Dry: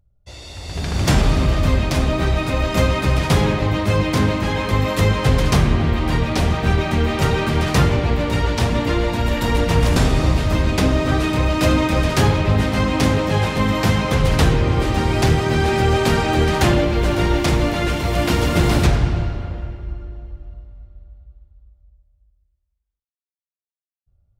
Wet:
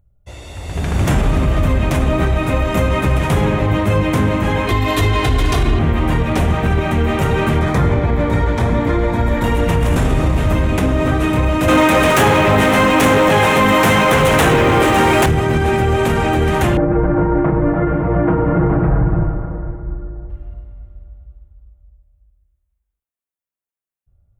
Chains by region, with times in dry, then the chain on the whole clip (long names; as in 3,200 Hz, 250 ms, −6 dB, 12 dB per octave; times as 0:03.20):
0:04.67–0:05.79: parametric band 4,200 Hz +11.5 dB 0.68 octaves + notch filter 4,300 Hz, Q 24 + comb filter 2.8 ms, depth 81%
0:07.59–0:09.44: high-shelf EQ 6,600 Hz −10.5 dB + notch filter 2,800 Hz, Q 5.4
0:11.68–0:15.26: high-pass filter 470 Hz 6 dB per octave + leveller curve on the samples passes 3
0:16.77–0:20.30: low-pass filter 1,400 Hz 24 dB per octave + comb filter 6.3 ms, depth 74%
whole clip: parametric band 4,700 Hz −13.5 dB 0.78 octaves; brickwall limiter −11 dBFS; level +4.5 dB